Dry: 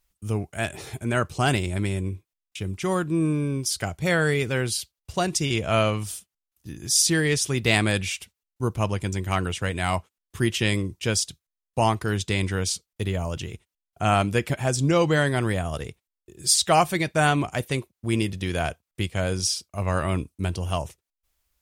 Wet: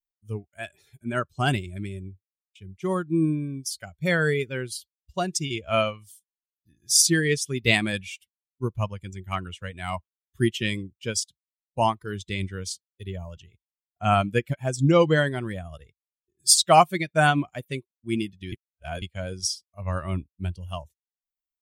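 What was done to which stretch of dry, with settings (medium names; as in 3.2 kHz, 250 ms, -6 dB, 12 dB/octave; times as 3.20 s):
18.52–19.02 s: reverse
whole clip: expander on every frequency bin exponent 1.5; spectral noise reduction 8 dB; upward expansion 1.5:1, over -42 dBFS; trim +5.5 dB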